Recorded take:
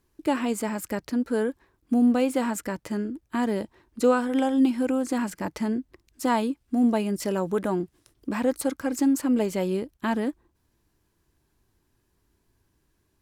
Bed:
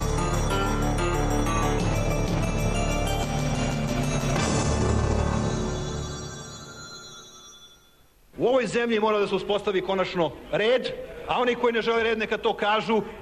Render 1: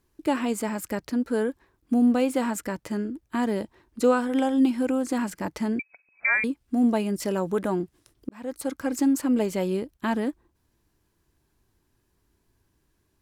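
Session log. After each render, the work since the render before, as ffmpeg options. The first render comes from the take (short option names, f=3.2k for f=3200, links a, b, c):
-filter_complex "[0:a]asettb=1/sr,asplit=3[a][b][c];[a]atrim=end=5.794[d];[b]atrim=start=5.79:end=6.44,asetpts=PTS-STARTPTS,afade=t=in:d=0.004:c=qsin,afade=t=out:st=0.646:d=0.004:c=qsin,lowpass=f=2.2k:t=q:w=0.5098,lowpass=f=2.2k:t=q:w=0.6013,lowpass=f=2.2k:t=q:w=0.9,lowpass=f=2.2k:t=q:w=2.563,afreqshift=-2600[e];[c]atrim=start=6.436[f];[d][e]acrossfade=d=0.004:c1=hsin:c2=qsin[g];[g][f]acrossfade=d=0.004:c1=qsin:c2=hsin,asplit=2[h][i];[h]atrim=end=8.29,asetpts=PTS-STARTPTS,afade=t=out:st=8.286:d=0.004:c=hsin[j];[i]atrim=start=8.29,asetpts=PTS-STARTPTS,afade=t=in:d=0.55[k];[j][k]concat=n=2:v=0:a=1"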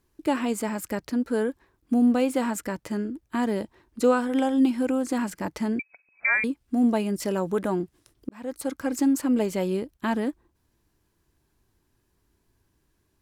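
-af anull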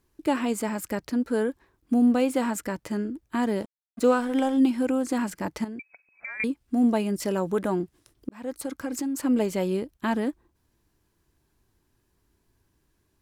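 -filter_complex "[0:a]asettb=1/sr,asplit=3[a][b][c];[a]atrim=end=3.604[d];[b]atrim=start=3.6:end=4.57,asetpts=PTS-STARTPTS,afade=t=in:d=0.004:c=qsin,afade=t=out:st=0.966:d=0.004:c=qsin,aeval=exprs='sgn(val(0))*max(abs(val(0))-0.00531,0)':c=same[e];[c]atrim=start=4.566[f];[d][e]acrossfade=d=0.004:c1=hsin:c2=qsin[g];[g][f]acrossfade=d=0.004:c1=qsin:c2=hsin,asettb=1/sr,asplit=3[h][i][j];[h]atrim=end=5.644[k];[i]atrim=start=5.64:end=6.4,asetpts=PTS-STARTPTS,afade=t=in:d=0.004:c=qsin,afade=t=out:st=0.756:d=0.004:c=qsin,acompressor=threshold=-34dB:ratio=6:attack=3.2:release=140:knee=1:detection=peak[l];[j]atrim=start=6.396[m];[k][l]acrossfade=d=0.004:c1=hsin:c2=qsin[n];[n][m]acrossfade=d=0.004:c1=qsin:c2=hsin,asettb=1/sr,asplit=3[o][p][q];[o]atrim=end=8.524[r];[p]atrim=start=8.52:end=9.22,asetpts=PTS-STARTPTS,afade=t=in:d=0.004:c=qsin,afade=t=out:st=0.696:d=0.004:c=qsin,acompressor=threshold=-26dB:ratio=6:attack=3.2:release=140:knee=1:detection=peak[s];[q]atrim=start=9.216[t];[r][s]acrossfade=d=0.004:c1=hsin:c2=qsin[u];[u][t]acrossfade=d=0.004:c1=qsin:c2=hsin"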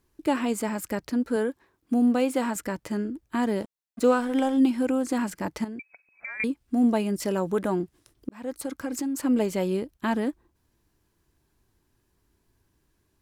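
-filter_complex "[0:a]asettb=1/sr,asplit=3[a][b][c];[a]atrim=end=1.364[d];[b]atrim=start=1.36:end=2.56,asetpts=PTS-STARTPTS,afade=t=in:d=0.004:c=qsin,afade=t=out:st=1.196:d=0.004:c=qsin,highpass=f=150:p=1[e];[c]atrim=start=2.556[f];[d][e]acrossfade=d=0.004:c1=hsin:c2=qsin[g];[g][f]acrossfade=d=0.004:c1=qsin:c2=hsin"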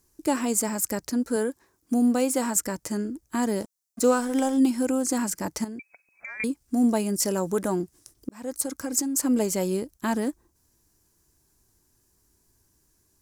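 -af "highshelf=f=4.5k:t=q:w=1.5:g=10"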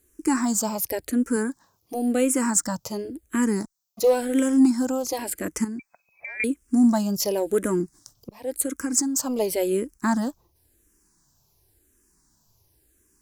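-filter_complex "[0:a]asplit=2[a][b];[b]aeval=exprs='0.376*sin(PI/2*2*val(0)/0.376)':c=same,volume=-12dB[c];[a][c]amix=inputs=2:normalize=0,asplit=2[d][e];[e]afreqshift=-0.93[f];[d][f]amix=inputs=2:normalize=1"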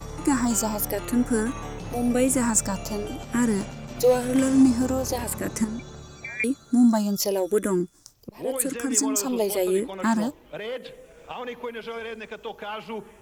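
-filter_complex "[1:a]volume=-11dB[a];[0:a][a]amix=inputs=2:normalize=0"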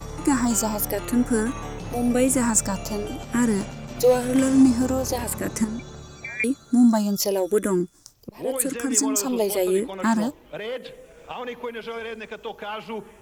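-af "volume=1.5dB"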